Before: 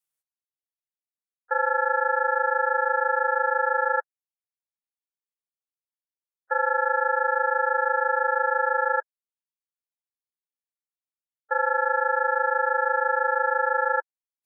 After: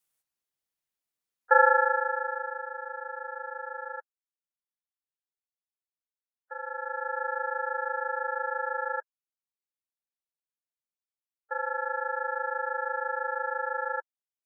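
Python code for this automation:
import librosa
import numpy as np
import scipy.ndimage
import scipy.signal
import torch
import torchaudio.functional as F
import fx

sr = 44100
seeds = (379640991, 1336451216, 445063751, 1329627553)

y = fx.gain(x, sr, db=fx.line((1.59, 5.5), (2.03, -5.0), (2.7, -14.5), (6.56, -14.5), (7.21, -8.0)))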